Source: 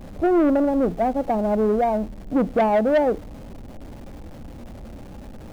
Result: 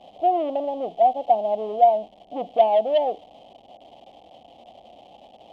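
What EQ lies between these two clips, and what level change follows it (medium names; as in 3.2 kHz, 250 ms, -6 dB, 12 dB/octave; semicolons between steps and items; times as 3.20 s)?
two resonant band-passes 1.5 kHz, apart 2.1 oct; +8.0 dB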